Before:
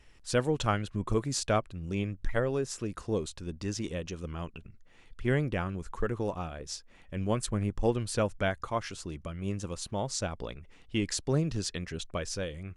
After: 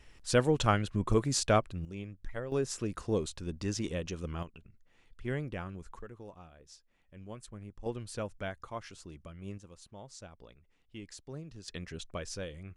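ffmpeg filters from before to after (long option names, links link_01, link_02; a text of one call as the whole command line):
ffmpeg -i in.wav -af "asetnsamples=nb_out_samples=441:pad=0,asendcmd='1.85 volume volume -10dB;2.52 volume volume 0dB;4.43 volume volume -7.5dB;5.99 volume volume -16dB;7.86 volume volume -9dB;9.58 volume volume -16dB;11.68 volume volume -5dB',volume=1.5dB" out.wav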